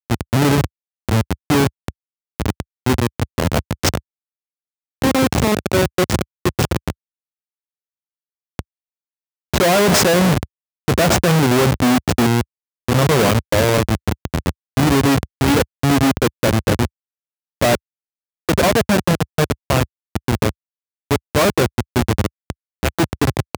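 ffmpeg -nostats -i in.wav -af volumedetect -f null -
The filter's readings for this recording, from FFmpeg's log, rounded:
mean_volume: -18.7 dB
max_volume: -3.2 dB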